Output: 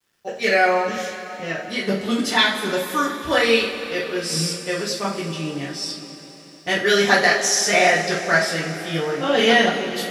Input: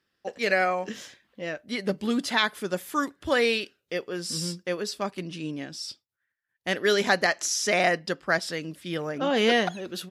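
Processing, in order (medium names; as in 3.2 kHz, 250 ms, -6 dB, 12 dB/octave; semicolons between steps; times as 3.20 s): two-slope reverb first 0.34 s, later 4.2 s, from -18 dB, DRR -6.5 dB; bit crusher 11-bit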